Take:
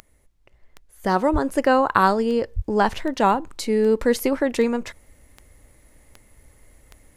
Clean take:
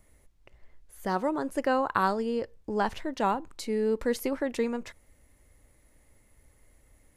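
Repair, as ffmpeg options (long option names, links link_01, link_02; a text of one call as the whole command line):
ffmpeg -i in.wav -filter_complex "[0:a]adeclick=threshold=4,asplit=3[link_01][link_02][link_03];[link_01]afade=type=out:start_time=1.32:duration=0.02[link_04];[link_02]highpass=frequency=140:width=0.5412,highpass=frequency=140:width=1.3066,afade=type=in:start_time=1.32:duration=0.02,afade=type=out:start_time=1.44:duration=0.02[link_05];[link_03]afade=type=in:start_time=1.44:duration=0.02[link_06];[link_04][link_05][link_06]amix=inputs=3:normalize=0,asplit=3[link_07][link_08][link_09];[link_07]afade=type=out:start_time=2.55:duration=0.02[link_10];[link_08]highpass=frequency=140:width=0.5412,highpass=frequency=140:width=1.3066,afade=type=in:start_time=2.55:duration=0.02,afade=type=out:start_time=2.67:duration=0.02[link_11];[link_09]afade=type=in:start_time=2.67:duration=0.02[link_12];[link_10][link_11][link_12]amix=inputs=3:normalize=0,asetnsamples=nb_out_samples=441:pad=0,asendcmd='1.04 volume volume -8.5dB',volume=0dB" out.wav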